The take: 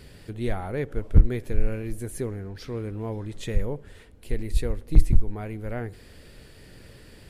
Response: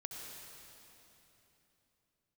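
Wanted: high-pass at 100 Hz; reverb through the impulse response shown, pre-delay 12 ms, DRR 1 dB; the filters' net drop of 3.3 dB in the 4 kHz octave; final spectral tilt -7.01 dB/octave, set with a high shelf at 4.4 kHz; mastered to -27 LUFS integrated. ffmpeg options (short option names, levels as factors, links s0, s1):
-filter_complex "[0:a]highpass=100,equalizer=f=4000:t=o:g=-6.5,highshelf=f=4400:g=4.5,asplit=2[s0][s1];[1:a]atrim=start_sample=2205,adelay=12[s2];[s1][s2]afir=irnorm=-1:irlink=0,volume=1.12[s3];[s0][s3]amix=inputs=2:normalize=0,volume=1.41"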